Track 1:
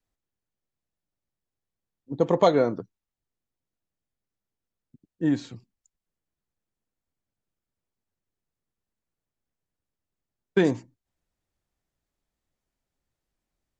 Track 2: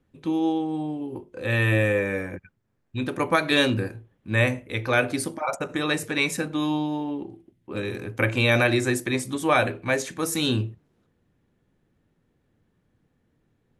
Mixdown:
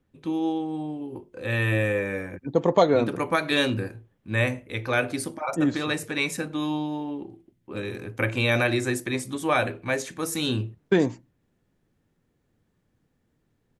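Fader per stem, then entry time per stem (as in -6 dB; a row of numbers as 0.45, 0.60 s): +0.5, -2.5 dB; 0.35, 0.00 s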